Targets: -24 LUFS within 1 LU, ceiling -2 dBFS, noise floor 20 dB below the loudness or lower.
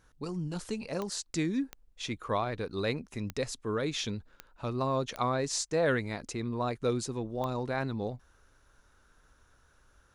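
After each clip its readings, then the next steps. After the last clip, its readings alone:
clicks found 6; loudness -33.5 LUFS; peak level -15.0 dBFS; loudness target -24.0 LUFS
-> de-click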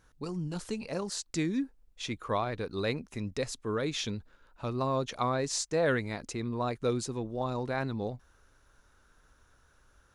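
clicks found 0; loudness -33.5 LUFS; peak level -15.0 dBFS; loudness target -24.0 LUFS
-> trim +9.5 dB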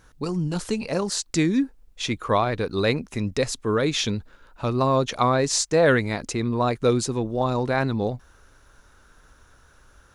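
loudness -24.0 LUFS; peak level -5.5 dBFS; noise floor -56 dBFS

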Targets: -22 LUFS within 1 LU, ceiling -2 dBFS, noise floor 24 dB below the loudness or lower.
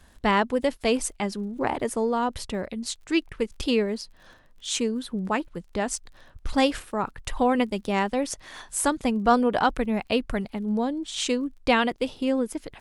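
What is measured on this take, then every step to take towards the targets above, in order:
tick rate 39 per s; loudness -26.5 LUFS; peak level -8.5 dBFS; loudness target -22.0 LUFS
-> de-click; trim +4.5 dB

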